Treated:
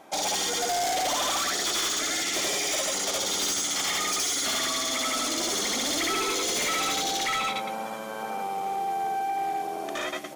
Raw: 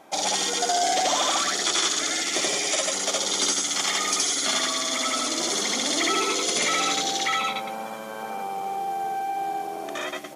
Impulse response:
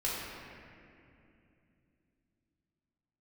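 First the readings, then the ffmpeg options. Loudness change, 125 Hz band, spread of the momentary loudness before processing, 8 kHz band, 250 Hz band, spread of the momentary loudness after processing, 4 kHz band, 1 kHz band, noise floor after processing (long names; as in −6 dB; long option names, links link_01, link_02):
−2.5 dB, 0.0 dB, 10 LU, −3.0 dB, −2.5 dB, 7 LU, −3.0 dB, −2.0 dB, −35 dBFS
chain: -af "volume=24.5dB,asoftclip=hard,volume=-24.5dB"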